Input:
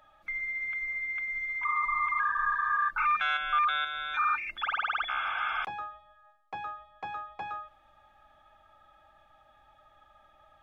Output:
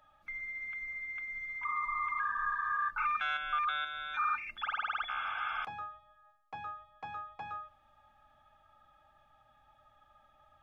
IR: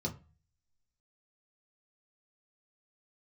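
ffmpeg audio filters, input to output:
-filter_complex "[0:a]asplit=2[a][b];[1:a]atrim=start_sample=2205,lowpass=3.4k[c];[b][c]afir=irnorm=-1:irlink=0,volume=-13.5dB[d];[a][d]amix=inputs=2:normalize=0,volume=-5dB"

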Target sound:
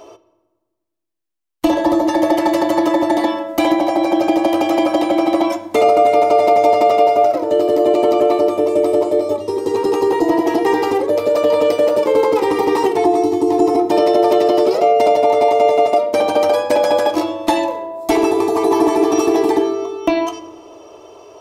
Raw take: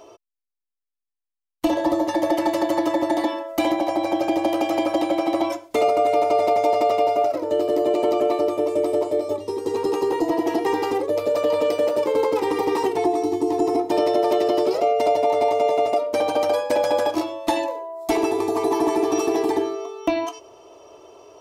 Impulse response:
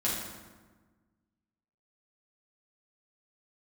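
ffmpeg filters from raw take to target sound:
-filter_complex "[0:a]asplit=2[a][b];[1:a]atrim=start_sample=2205,lowpass=4.7k[c];[b][c]afir=irnorm=-1:irlink=0,volume=-18dB[d];[a][d]amix=inputs=2:normalize=0,volume=5dB"

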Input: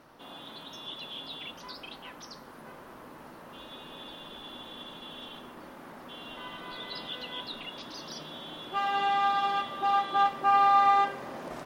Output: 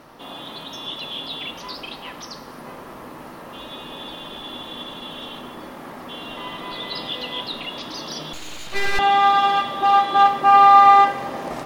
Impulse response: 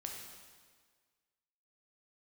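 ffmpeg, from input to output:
-filter_complex "[0:a]bandreject=f=1.5k:w=14,asplit=2[a][b];[1:a]atrim=start_sample=2205[c];[b][c]afir=irnorm=-1:irlink=0,volume=-4dB[d];[a][d]amix=inputs=2:normalize=0,asettb=1/sr,asplit=3[e][f][g];[e]atrim=end=8.334[h];[f]atrim=start=8.33:end=8.99,asetpts=PTS-STARTPTS,afade=t=in:d=0.004:c=qsin,afade=t=out:st=0.656:d=0.004:c=qsin,aeval=exprs='abs(val(0))':c=same[i];[g]atrim=start=8.986[j];[h][i]acrossfade=d=0.004:c1=hsin:c2=qsin[k];[k][j]acrossfade=d=0.004:c1=qsin:c2=hsin,volume=7dB"

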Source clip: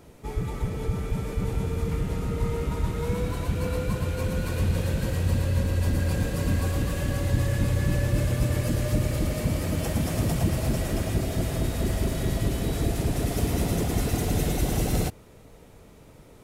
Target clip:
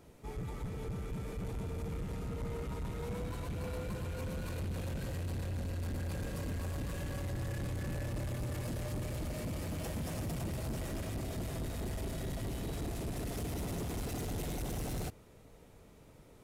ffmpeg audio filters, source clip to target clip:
-af "asoftclip=type=tanh:threshold=-26.5dB,volume=-7.5dB"

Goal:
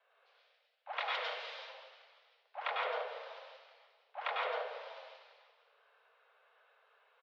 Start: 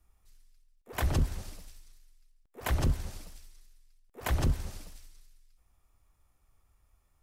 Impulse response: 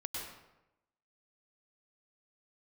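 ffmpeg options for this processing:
-filter_complex "[0:a]asettb=1/sr,asplit=3[a][b][c];[a]atrim=end=0.994[d];[b]atrim=start=0.99:end=1.55,asetpts=PTS-STARTPTS,afade=t=in:d=0.004:c=qsin,afade=t=out:st=0.556:d=0.004:c=qsin,tiltshelf=f=1.2k:g=-9.5[e];[c]atrim=start=1.546[f];[d][e]acrossfade=d=0.004:c1=hsin:c2=qsin[g];[g][f]acrossfade=d=0.004:c1=qsin:c2=hsin,acompressor=threshold=-48dB:ratio=2,asplit=4[h][i][j][k];[i]adelay=341,afreqshift=-41,volume=-19dB[l];[j]adelay=682,afreqshift=-82,volume=-26.1dB[m];[k]adelay=1023,afreqshift=-123,volume=-33.3dB[n];[h][l][m][n]amix=inputs=4:normalize=0[o];[1:a]atrim=start_sample=2205,afade=t=out:st=0.41:d=0.01,atrim=end_sample=18522[p];[o][p]afir=irnorm=-1:irlink=0,highpass=f=160:t=q:w=0.5412,highpass=f=160:t=q:w=1.307,lowpass=f=3.5k:t=q:w=0.5176,lowpass=f=3.5k:t=q:w=0.7071,lowpass=f=3.5k:t=q:w=1.932,afreqshift=350,volume=10dB"

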